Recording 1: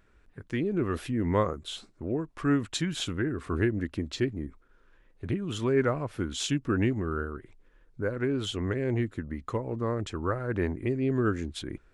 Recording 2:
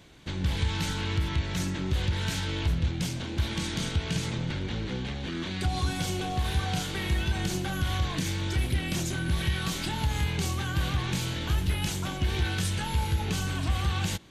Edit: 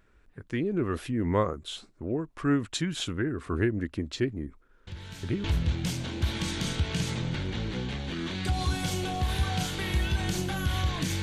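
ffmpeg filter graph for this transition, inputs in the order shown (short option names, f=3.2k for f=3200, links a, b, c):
-filter_complex "[1:a]asplit=2[a][b];[0:a]apad=whole_dur=11.22,atrim=end=11.22,atrim=end=5.442[c];[b]atrim=start=2.598:end=8.38[d];[a]atrim=start=2.03:end=2.6,asetpts=PTS-STARTPTS,volume=-13dB,afade=t=in:d=0.004:c=hsin,afade=t=out:st=0.566:d=0.004:c=hsin,adelay=4870[e];[c][d]acrossfade=d=0.004:c1=hsin:c2=hsin[f];[f][e]amix=inputs=2:normalize=0"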